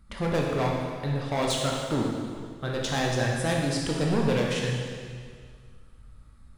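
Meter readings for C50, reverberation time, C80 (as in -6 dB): 1.0 dB, 2.0 s, 2.5 dB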